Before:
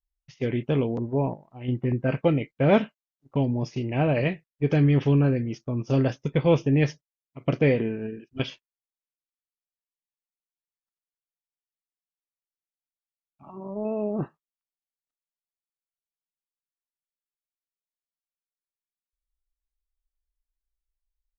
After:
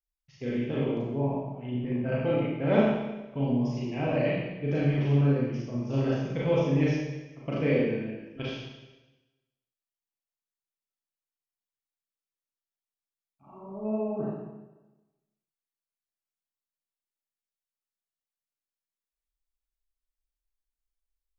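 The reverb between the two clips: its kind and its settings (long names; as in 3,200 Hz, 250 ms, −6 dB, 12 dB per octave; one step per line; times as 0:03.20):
four-comb reverb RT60 1.1 s, combs from 29 ms, DRR −6.5 dB
level −10.5 dB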